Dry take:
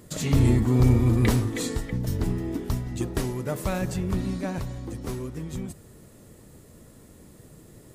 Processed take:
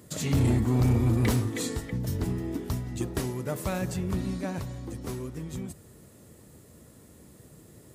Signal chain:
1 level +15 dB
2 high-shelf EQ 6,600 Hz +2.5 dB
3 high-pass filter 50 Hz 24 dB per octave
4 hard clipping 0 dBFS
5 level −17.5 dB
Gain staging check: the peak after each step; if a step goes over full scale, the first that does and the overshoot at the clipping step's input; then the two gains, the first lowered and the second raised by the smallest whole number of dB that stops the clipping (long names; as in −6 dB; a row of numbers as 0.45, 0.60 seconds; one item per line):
+5.0, +5.0, +7.5, 0.0, −17.5 dBFS
step 1, 7.5 dB
step 1 +7 dB, step 5 −9.5 dB